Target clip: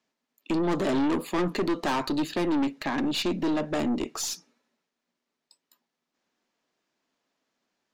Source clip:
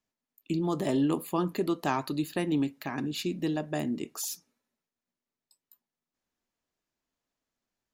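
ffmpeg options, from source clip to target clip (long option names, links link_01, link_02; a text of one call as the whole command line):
ffmpeg -i in.wav -filter_complex "[0:a]acrossover=split=160 6800:gain=0.0794 1 0.141[link_01][link_02][link_03];[link_01][link_02][link_03]amix=inputs=3:normalize=0,acontrast=56,aeval=exprs='(tanh(22.4*val(0)+0.3)-tanh(0.3))/22.4':channel_layout=same,volume=4.5dB" out.wav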